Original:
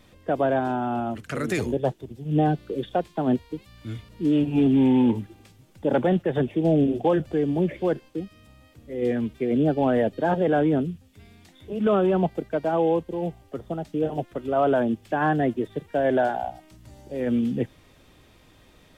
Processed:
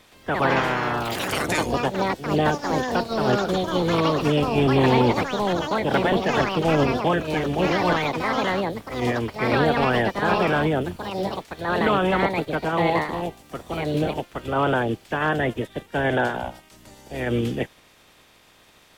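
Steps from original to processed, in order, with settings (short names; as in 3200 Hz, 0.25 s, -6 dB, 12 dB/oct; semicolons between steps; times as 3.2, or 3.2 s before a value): spectral limiter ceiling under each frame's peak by 18 dB; echoes that change speed 0.119 s, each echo +4 st, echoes 3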